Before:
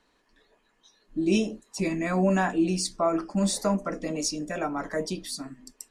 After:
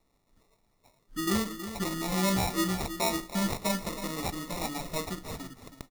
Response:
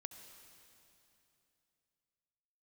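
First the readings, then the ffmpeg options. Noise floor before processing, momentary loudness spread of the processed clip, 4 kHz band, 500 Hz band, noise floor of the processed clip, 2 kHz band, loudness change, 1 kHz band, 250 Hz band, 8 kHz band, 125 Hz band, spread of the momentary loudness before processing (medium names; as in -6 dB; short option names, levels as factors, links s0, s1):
-69 dBFS, 12 LU, 0.0 dB, -7.0 dB, -72 dBFS, -2.0 dB, -3.5 dB, -2.5 dB, -5.5 dB, -2.0 dB, -3.0 dB, 11 LU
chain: -filter_complex "[0:a]acrusher=samples=28:mix=1:aa=0.000001,equalizer=f=420:w=0.35:g=-8,aecho=1:1:321:0.282,asplit=2[s0][s1];[1:a]atrim=start_sample=2205[s2];[s1][s2]afir=irnorm=-1:irlink=0,volume=0.266[s3];[s0][s3]amix=inputs=2:normalize=0,acrusher=bits=6:mode=log:mix=0:aa=0.000001,equalizer=f=2600:w=3.5:g=-7"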